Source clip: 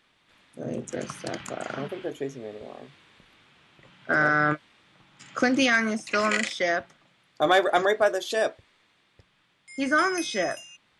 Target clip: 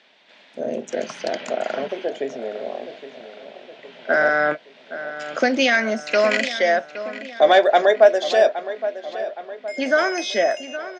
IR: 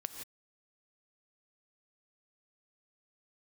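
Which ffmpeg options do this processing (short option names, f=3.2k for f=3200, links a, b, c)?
-filter_complex "[0:a]asplit=2[a][b];[b]acompressor=threshold=-37dB:ratio=6,volume=1.5dB[c];[a][c]amix=inputs=2:normalize=0,highpass=f=230:w=0.5412,highpass=f=230:w=1.3066,equalizer=f=310:t=q:w=4:g=-8,equalizer=f=630:t=q:w=4:g=7,equalizer=f=1.2k:t=q:w=4:g=-10,lowpass=f=5.8k:w=0.5412,lowpass=f=5.8k:w=1.3066,asplit=2[d][e];[e]adelay=817,lowpass=f=3k:p=1,volume=-12.5dB,asplit=2[f][g];[g]adelay=817,lowpass=f=3k:p=1,volume=0.52,asplit=2[h][i];[i]adelay=817,lowpass=f=3k:p=1,volume=0.52,asplit=2[j][k];[k]adelay=817,lowpass=f=3k:p=1,volume=0.52,asplit=2[l][m];[m]adelay=817,lowpass=f=3k:p=1,volume=0.52[n];[d][f][h][j][l][n]amix=inputs=6:normalize=0,volume=3.5dB"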